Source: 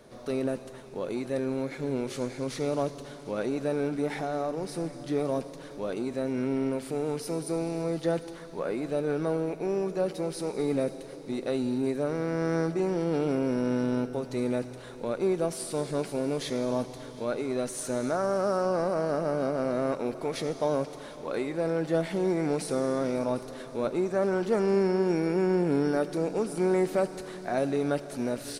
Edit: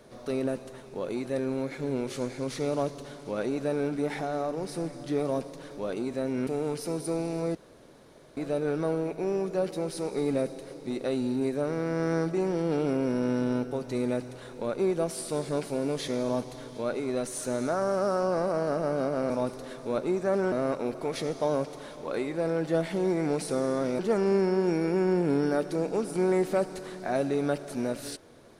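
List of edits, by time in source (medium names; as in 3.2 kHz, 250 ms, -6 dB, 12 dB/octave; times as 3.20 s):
6.47–6.89 s: delete
7.97–8.79 s: room tone
23.19–24.41 s: move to 19.72 s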